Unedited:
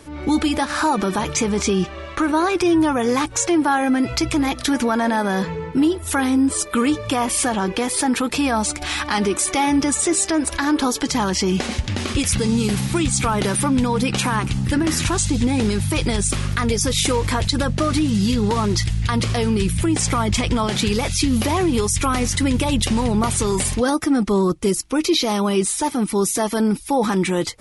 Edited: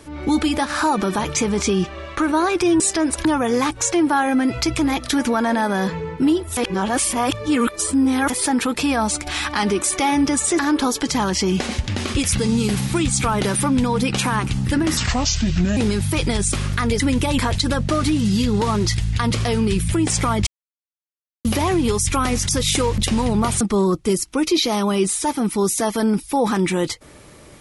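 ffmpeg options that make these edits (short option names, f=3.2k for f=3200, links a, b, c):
-filter_complex "[0:a]asplit=15[a][b][c][d][e][f][g][h][i][j][k][l][m][n][o];[a]atrim=end=2.802[p];[b]atrim=start=10.138:end=10.592[q];[c]atrim=start=2.798:end=6.122[r];[d]atrim=start=6.118:end=7.852,asetpts=PTS-STARTPTS,areverse[s];[e]atrim=start=7.848:end=10.142[t];[f]atrim=start=10.588:end=14.974[u];[g]atrim=start=14.97:end=15.56,asetpts=PTS-STARTPTS,asetrate=32634,aresample=44100[v];[h]atrim=start=15.556:end=16.792[w];[i]atrim=start=22.378:end=22.772[x];[j]atrim=start=17.278:end=20.36,asetpts=PTS-STARTPTS,afade=t=out:st=3.078:d=0.004:c=hsin[y];[k]atrim=start=20.36:end=21.34,asetpts=PTS-STARTPTS,volume=0[z];[l]atrim=start=21.34:end=22.382,asetpts=PTS-STARTPTS,afade=t=in:d=0.004:c=hsin[aa];[m]atrim=start=16.788:end=17.282[ab];[n]atrim=start=22.768:end=23.402[ac];[o]atrim=start=24.178[ad];[p][q]acrossfade=d=0.004:c1=hsin:c2=hsin[ae];[ae][r]acrossfade=d=0.004:c1=hsin:c2=hsin[af];[af][s]acrossfade=d=0.004:c1=hsin:c2=hsin[ag];[ag][t]acrossfade=d=0.004:c1=hsin:c2=hsin[ah];[ah][u]acrossfade=d=0.004:c1=hsin:c2=hsin[ai];[ai][v]acrossfade=d=0.004:c1=hsin:c2=hsin[aj];[aj][w]acrossfade=d=0.004:c1=hsin:c2=hsin[ak];[ak][x]acrossfade=d=0.004:c1=hsin:c2=hsin[al];[y][z][aa]concat=n=3:v=0:a=1[am];[al][am]acrossfade=d=0.004:c1=hsin:c2=hsin[an];[an][ab]acrossfade=d=0.004:c1=hsin:c2=hsin[ao];[ao][ac]acrossfade=d=0.004:c1=hsin:c2=hsin[ap];[ap][ad]acrossfade=d=0.004:c1=hsin:c2=hsin"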